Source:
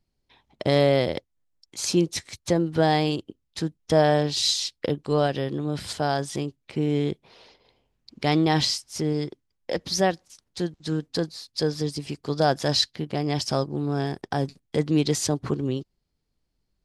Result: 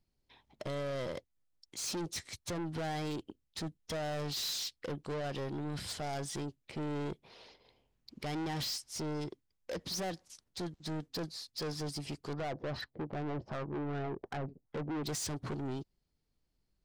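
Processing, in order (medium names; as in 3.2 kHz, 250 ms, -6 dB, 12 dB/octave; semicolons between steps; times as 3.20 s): 12.33–15.04 s: LFO low-pass sine 2.6 Hz 400–1500 Hz; peak limiter -13.5 dBFS, peak gain reduction 8 dB; saturation -30.5 dBFS, distortion -5 dB; trim -4 dB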